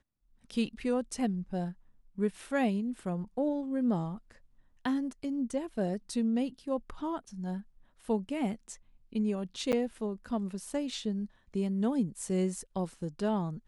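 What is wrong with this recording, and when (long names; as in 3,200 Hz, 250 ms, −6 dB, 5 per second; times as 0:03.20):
0:09.72–0:09.73: drop-out 8.4 ms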